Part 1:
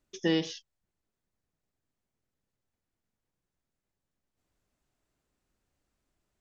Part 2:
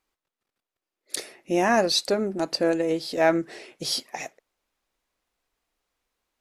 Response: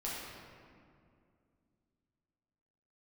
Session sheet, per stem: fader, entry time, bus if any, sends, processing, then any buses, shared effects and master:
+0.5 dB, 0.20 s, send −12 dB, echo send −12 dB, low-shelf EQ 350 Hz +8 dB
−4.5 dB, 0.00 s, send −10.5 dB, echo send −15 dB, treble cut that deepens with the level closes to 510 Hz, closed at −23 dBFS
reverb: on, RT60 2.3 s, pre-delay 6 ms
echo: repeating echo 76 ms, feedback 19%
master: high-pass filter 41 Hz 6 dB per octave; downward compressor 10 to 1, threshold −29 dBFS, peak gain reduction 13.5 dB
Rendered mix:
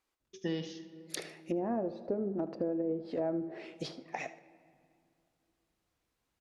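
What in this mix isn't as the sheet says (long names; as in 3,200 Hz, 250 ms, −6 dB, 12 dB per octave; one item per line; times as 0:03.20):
stem 1 +0.5 dB → −11.0 dB
stem 2: send −10.5 dB → −18 dB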